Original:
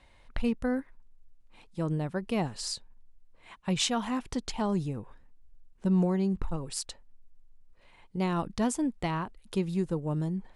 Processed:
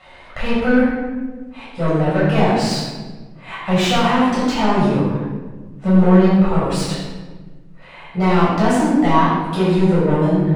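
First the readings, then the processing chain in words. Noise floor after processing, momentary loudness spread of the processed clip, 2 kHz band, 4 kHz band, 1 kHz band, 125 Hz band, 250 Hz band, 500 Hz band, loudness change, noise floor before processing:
-41 dBFS, 16 LU, +18.0 dB, +11.0 dB, +18.0 dB, +14.5 dB, +14.5 dB, +16.5 dB, +14.5 dB, -59 dBFS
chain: overdrive pedal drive 23 dB, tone 1800 Hz, clips at -15 dBFS; shoebox room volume 1000 m³, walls mixed, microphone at 6.7 m; gain -3 dB

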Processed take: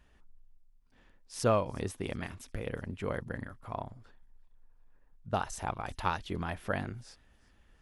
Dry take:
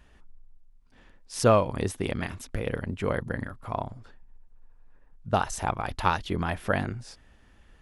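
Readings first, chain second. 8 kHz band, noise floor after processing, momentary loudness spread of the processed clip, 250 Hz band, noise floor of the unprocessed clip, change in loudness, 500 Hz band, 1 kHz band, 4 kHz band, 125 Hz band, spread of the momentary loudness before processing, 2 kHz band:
-7.0 dB, -64 dBFS, 13 LU, -7.0 dB, -57 dBFS, -7.0 dB, -7.0 dB, -7.0 dB, -7.0 dB, -7.0 dB, 13 LU, -7.0 dB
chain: thin delay 0.362 s, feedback 44%, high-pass 3300 Hz, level -21.5 dB; gain -7 dB

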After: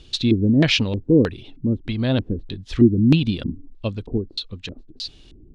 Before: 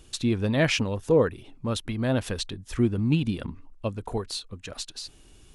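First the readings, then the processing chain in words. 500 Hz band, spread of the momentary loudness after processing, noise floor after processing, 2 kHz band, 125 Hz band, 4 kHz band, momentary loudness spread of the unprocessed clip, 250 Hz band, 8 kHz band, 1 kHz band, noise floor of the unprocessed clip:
+2.0 dB, 17 LU, -48 dBFS, +3.0 dB, +6.5 dB, +7.0 dB, 14 LU, +9.0 dB, n/a, -3.0 dB, -54 dBFS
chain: bell 1200 Hz -7 dB 2.4 oct; LFO low-pass square 1.6 Hz 310–3900 Hz; gain +6 dB

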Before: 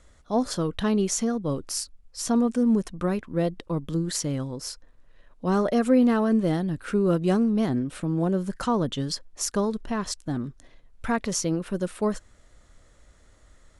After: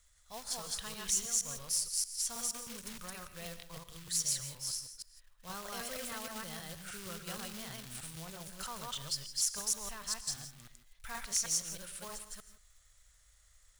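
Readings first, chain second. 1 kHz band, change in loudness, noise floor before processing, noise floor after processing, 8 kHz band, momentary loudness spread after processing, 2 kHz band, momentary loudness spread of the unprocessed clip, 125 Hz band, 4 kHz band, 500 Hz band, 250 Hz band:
-15.0 dB, -10.5 dB, -57 dBFS, -65 dBFS, +0.5 dB, 15 LU, -9.0 dB, 10 LU, -21.5 dB, -2.0 dB, -23.5 dB, -28.0 dB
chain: reverse delay 0.157 s, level -0.5 dB; high shelf 5800 Hz +9.5 dB; non-linear reverb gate 0.19 s rising, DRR 11 dB; short-mantissa float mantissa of 2-bit; passive tone stack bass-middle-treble 10-0-10; gain -8 dB

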